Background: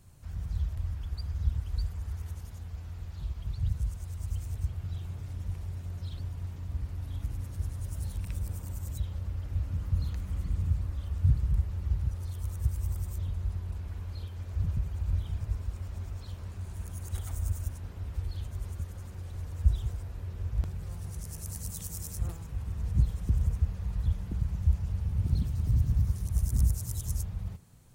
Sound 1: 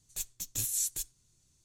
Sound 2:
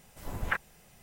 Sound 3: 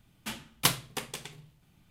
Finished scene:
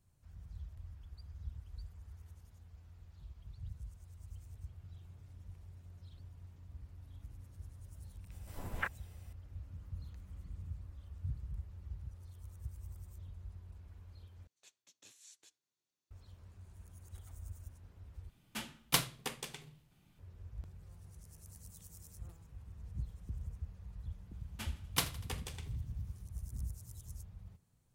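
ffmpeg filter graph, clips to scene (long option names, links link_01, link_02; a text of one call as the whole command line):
ffmpeg -i bed.wav -i cue0.wav -i cue1.wav -i cue2.wav -filter_complex "[3:a]asplit=2[link_01][link_02];[0:a]volume=-16dB[link_03];[2:a]bandreject=frequency=6600:width=15[link_04];[1:a]highpass=380,lowpass=3700[link_05];[link_01]aeval=exprs='clip(val(0),-1,0.15)':channel_layout=same[link_06];[link_02]aecho=1:1:81|162|243|324|405:0.112|0.0662|0.0391|0.023|0.0136[link_07];[link_03]asplit=3[link_08][link_09][link_10];[link_08]atrim=end=14.474[link_11];[link_05]atrim=end=1.64,asetpts=PTS-STARTPTS,volume=-14dB[link_12];[link_09]atrim=start=16.106:end=18.294[link_13];[link_06]atrim=end=1.9,asetpts=PTS-STARTPTS,volume=-4.5dB[link_14];[link_10]atrim=start=20.186[link_15];[link_04]atrim=end=1.02,asetpts=PTS-STARTPTS,volume=-6.5dB,afade=type=in:duration=0.004:curve=hsin,afade=type=out:start_time=1.016:duration=0.004:curve=hsin,adelay=8310[link_16];[link_07]atrim=end=1.9,asetpts=PTS-STARTPTS,volume=-8dB,afade=type=in:duration=0.004:curve=hsin,afade=type=out:start_time=1.896:duration=0.004:curve=hsin,adelay=24330[link_17];[link_11][link_12]acrossfade=duration=0.004:curve1=hsin:curve2=hsin[link_18];[link_18][link_13]acrossfade=duration=0.004:curve1=hsin:curve2=hsin[link_19];[link_19][link_14]acrossfade=duration=0.004:curve1=hsin:curve2=hsin[link_20];[link_20][link_15]acrossfade=duration=0.004:curve1=hsin:curve2=hsin[link_21];[link_21][link_16][link_17]amix=inputs=3:normalize=0" out.wav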